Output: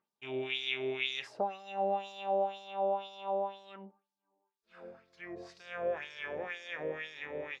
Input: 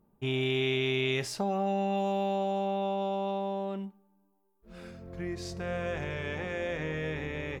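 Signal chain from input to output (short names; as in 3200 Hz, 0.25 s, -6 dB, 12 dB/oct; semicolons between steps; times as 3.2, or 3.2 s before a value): LFO band-pass sine 2 Hz 530–5100 Hz; gain +4 dB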